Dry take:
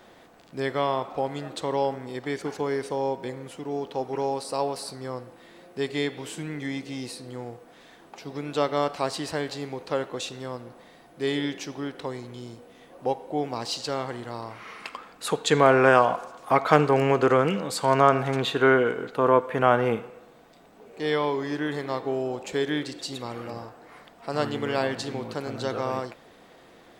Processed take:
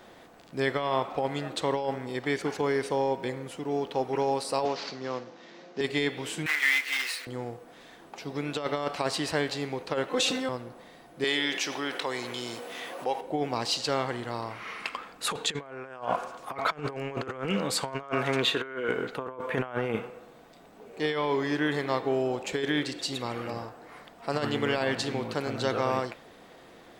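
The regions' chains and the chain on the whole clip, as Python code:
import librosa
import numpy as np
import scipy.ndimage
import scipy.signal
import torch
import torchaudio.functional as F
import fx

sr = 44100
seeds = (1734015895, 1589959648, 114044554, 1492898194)

y = fx.chain(x, sr, fx.cvsd(bps=32000),
    fx.highpass(hz=150.0, slope=24), at=(4.65, 5.81))
y = fx.chain(y, sr, fx.block_float(bits=3),
    fx.highpass(hz=880.0, slope=12),
    fx.peak_eq(hz=2000.0, db=12.5, octaves=1.2), at=(6.46, 7.27))
y = fx.chain(y, sr, fx.highpass(hz=74.0, slope=12),
    fx.comb(ms=3.9, depth=0.99),
    fx.sustainer(db_per_s=27.0), at=(10.08, 10.49))
y = fx.chain(y, sr, fx.highpass(hz=850.0, slope=6),
    fx.env_flatten(amount_pct=50), at=(11.24, 13.21))
y = fx.chain(y, sr, fx.highpass(hz=250.0, slope=6),
    fx.notch(hz=770.0, q=6.7), at=(18.03, 18.89))
y = fx.over_compress(y, sr, threshold_db=-26.0, ratio=-0.5)
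y = fx.dynamic_eq(y, sr, hz=2400.0, q=0.92, threshold_db=-44.0, ratio=4.0, max_db=4)
y = y * 10.0 ** (-2.0 / 20.0)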